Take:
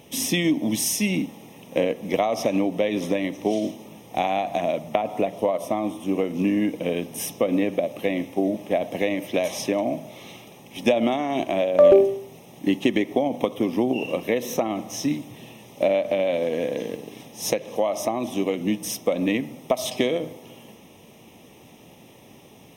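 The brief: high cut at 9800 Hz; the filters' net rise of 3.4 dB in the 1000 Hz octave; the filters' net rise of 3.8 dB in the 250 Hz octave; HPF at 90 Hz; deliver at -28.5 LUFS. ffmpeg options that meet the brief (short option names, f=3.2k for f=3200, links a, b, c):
-af "highpass=90,lowpass=9.8k,equalizer=f=250:t=o:g=4.5,equalizer=f=1k:t=o:g=5,volume=-7dB"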